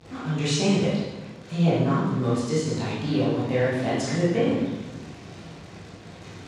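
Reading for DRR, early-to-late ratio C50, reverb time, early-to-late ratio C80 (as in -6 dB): -10.0 dB, -1.0 dB, 1.1 s, 3.0 dB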